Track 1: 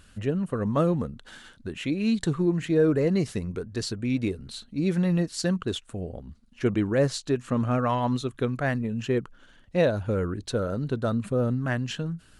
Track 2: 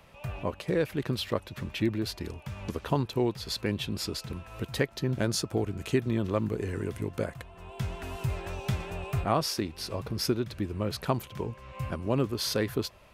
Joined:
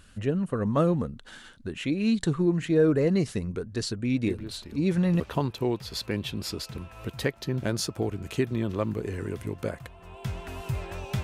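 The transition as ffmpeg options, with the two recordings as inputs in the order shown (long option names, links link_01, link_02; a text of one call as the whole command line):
ffmpeg -i cue0.wav -i cue1.wav -filter_complex "[1:a]asplit=2[link_01][link_02];[0:a]apad=whole_dur=11.23,atrim=end=11.23,atrim=end=5.202[link_03];[link_02]atrim=start=2.748:end=8.78[link_04];[link_01]atrim=start=1.81:end=2.75,asetpts=PTS-STARTPTS,volume=-8dB,afade=type=in:duration=0.004:curve=hsin,afade=type=out:start_time=0.936:duration=0.004:curve=hsin,adelay=4260[link_05];[link_03][link_04]acrossfade=duration=0.004:curve1=hsin:curve2=hsin[link_06];[link_06][link_05]amix=inputs=2:normalize=0" out.wav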